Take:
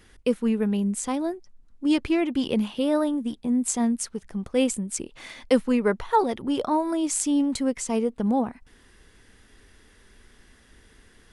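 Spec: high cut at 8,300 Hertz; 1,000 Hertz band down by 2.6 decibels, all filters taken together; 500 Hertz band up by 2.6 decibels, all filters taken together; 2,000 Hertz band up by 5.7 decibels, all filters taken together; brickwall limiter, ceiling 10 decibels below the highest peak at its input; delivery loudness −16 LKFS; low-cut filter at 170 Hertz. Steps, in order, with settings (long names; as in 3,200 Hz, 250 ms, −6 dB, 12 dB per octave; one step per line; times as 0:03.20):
high-pass filter 170 Hz
low-pass filter 8,300 Hz
parametric band 500 Hz +4 dB
parametric band 1,000 Hz −6 dB
parametric band 2,000 Hz +8.5 dB
level +11 dB
brickwall limiter −6 dBFS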